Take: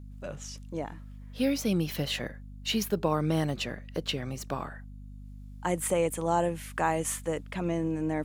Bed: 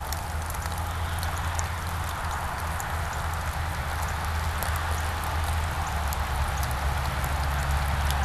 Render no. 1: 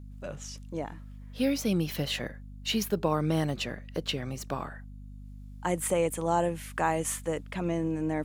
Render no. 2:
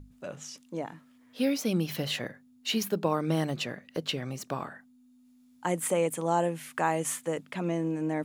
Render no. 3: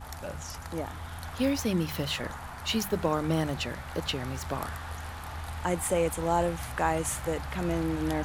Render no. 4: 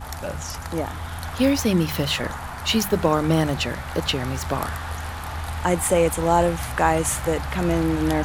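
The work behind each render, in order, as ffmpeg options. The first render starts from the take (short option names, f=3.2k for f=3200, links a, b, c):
-af anull
-af "bandreject=f=50:t=h:w=6,bandreject=f=100:t=h:w=6,bandreject=f=150:t=h:w=6,bandreject=f=200:t=h:w=6"
-filter_complex "[1:a]volume=-10.5dB[a];[0:a][a]amix=inputs=2:normalize=0"
-af "volume=8dB"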